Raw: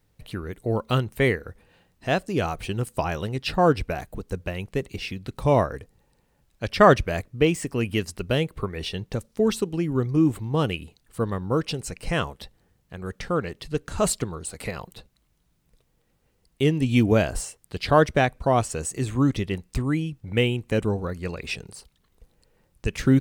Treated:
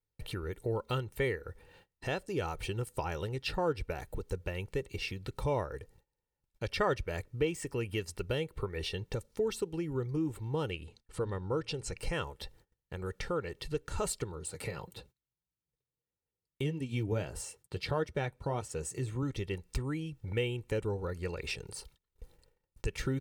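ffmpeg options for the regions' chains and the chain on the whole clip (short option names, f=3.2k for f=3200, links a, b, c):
-filter_complex "[0:a]asettb=1/sr,asplit=3[a][b][c];[a]atrim=end=10.704[d];[b]atrim=start=10.7:end=11.97,asetpts=PTS-STARTPTS,afade=t=in:d=0.004:c=qsin,afade=t=out:st=1.266:d=0.004:c=qsin,lowpass=8.1k,bandreject=f=113.8:t=h:w=4,bandreject=f=227.6:t=h:w=4[e];[c]atrim=start=11.966[f];[d][e]acrossfade=d=0.004:c1=hsin:c2=qsin[g];[g][f]acrossfade=d=0.004:c1=qsin:c2=hsin,asettb=1/sr,asplit=3[h][i][j];[h]atrim=end=14.324[k];[i]atrim=start=14.32:end=19.23,asetpts=PTS-STARTPTS,afade=t=in:d=0.004:c=qsin,afade=t=out:st=4.906:d=0.004:c=qsin,highpass=110,lowshelf=f=180:g=10,flanger=delay=3:depth=5.2:regen=-52:speed=1.6:shape=triangular[l];[j]atrim=start=19.226[m];[k][l]acrossfade=d=0.004:c1=hsin:c2=qsin[n];[n][m]acrossfade=d=0.004:c1=qsin:c2=hsin,acompressor=threshold=-40dB:ratio=2,aecho=1:1:2.2:0.51,agate=range=-25dB:threshold=-57dB:ratio=16:detection=peak"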